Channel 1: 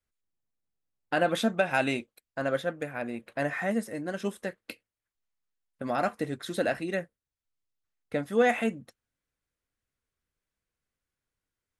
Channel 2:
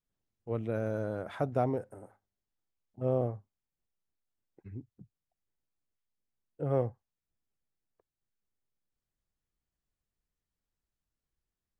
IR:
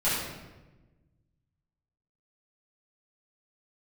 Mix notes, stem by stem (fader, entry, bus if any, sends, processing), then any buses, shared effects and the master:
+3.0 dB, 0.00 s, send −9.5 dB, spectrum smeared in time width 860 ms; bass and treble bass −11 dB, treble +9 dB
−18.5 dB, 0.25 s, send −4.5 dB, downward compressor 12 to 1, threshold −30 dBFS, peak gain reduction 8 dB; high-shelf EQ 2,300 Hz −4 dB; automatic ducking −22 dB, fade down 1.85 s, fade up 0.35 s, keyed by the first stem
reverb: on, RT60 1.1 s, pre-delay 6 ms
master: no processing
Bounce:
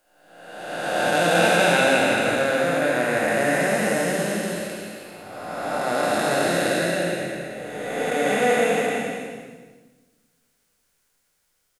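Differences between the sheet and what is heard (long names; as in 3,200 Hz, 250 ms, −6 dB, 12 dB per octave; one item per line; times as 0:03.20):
stem 1 +3.0 dB → +12.5 dB
stem 2: entry 0.25 s → 0.50 s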